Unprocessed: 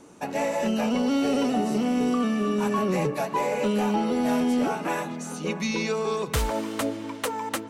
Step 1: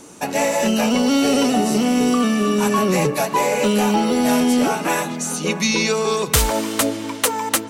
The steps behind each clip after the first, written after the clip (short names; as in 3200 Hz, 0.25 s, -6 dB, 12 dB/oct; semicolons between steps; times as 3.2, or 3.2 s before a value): high shelf 3500 Hz +10.5 dB; gain +6.5 dB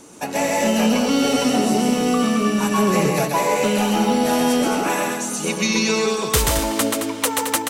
loudspeakers at several distances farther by 45 m -3 dB, 75 m -8 dB; gain -2.5 dB